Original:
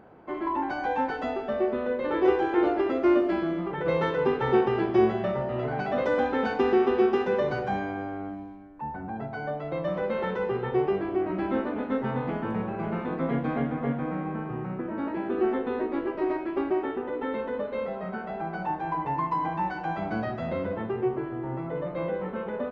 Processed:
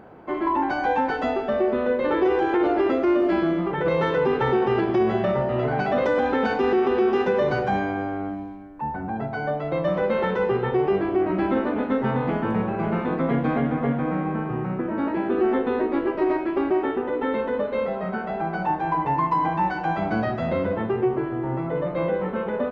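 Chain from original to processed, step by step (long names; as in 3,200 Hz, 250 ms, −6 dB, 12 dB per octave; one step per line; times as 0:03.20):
brickwall limiter −19 dBFS, peak gain reduction 8 dB
level +6 dB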